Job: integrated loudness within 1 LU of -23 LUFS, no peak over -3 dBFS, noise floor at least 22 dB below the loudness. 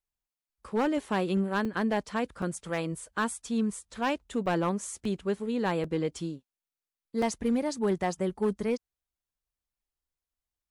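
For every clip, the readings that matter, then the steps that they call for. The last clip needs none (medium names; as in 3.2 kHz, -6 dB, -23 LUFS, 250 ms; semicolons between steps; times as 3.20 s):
clipped samples 0.8%; clipping level -21.0 dBFS; dropouts 6; longest dropout 3.2 ms; loudness -30.5 LUFS; peak level -21.0 dBFS; loudness target -23.0 LUFS
-> clip repair -21 dBFS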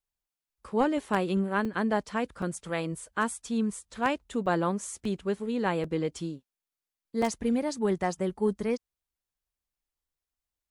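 clipped samples 0.0%; dropouts 6; longest dropout 3.2 ms
-> interpolate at 1.65/2.42/4.46/5.05/5.84/7.22 s, 3.2 ms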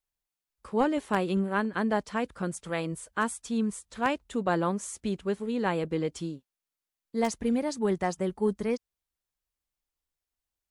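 dropouts 0; loudness -30.0 LUFS; peak level -12.0 dBFS; loudness target -23.0 LUFS
-> trim +7 dB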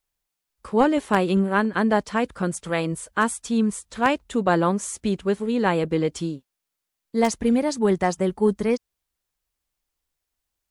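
loudness -23.0 LUFS; peak level -5.0 dBFS; noise floor -83 dBFS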